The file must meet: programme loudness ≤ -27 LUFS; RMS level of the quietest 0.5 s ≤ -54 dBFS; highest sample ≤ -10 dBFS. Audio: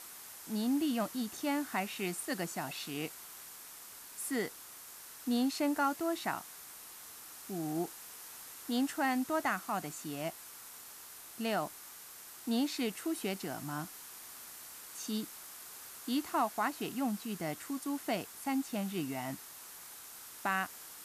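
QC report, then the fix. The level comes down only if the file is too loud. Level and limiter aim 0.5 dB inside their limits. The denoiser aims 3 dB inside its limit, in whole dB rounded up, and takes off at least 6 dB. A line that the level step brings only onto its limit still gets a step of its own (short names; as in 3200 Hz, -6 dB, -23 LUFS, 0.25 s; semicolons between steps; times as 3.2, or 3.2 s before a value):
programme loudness -37.0 LUFS: OK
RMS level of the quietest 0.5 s -51 dBFS: fail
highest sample -19.5 dBFS: OK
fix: denoiser 6 dB, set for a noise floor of -51 dBFS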